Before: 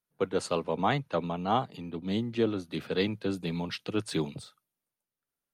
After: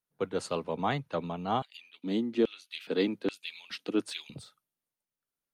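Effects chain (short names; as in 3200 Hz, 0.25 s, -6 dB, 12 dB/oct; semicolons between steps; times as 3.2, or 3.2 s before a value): 1.62–4.3 LFO high-pass square 1.2 Hz 270–2700 Hz; gain -3 dB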